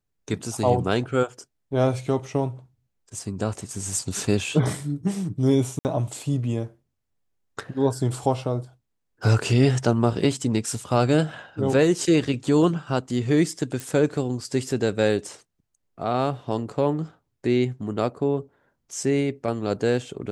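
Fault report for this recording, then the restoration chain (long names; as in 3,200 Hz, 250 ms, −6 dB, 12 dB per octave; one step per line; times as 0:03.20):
0:05.79–0:05.85: drop-out 59 ms
0:13.80: click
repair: click removal
repair the gap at 0:05.79, 59 ms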